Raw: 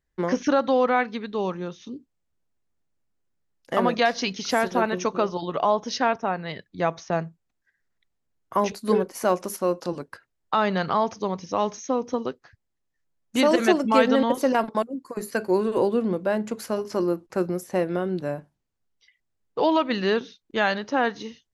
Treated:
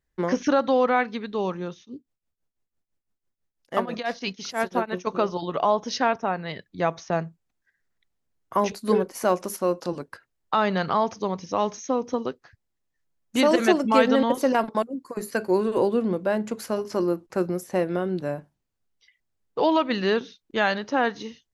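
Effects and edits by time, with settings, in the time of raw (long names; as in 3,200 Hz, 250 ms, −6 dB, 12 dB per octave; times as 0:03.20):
0:01.74–0:05.07: shaped tremolo triangle 6 Hz, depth 95%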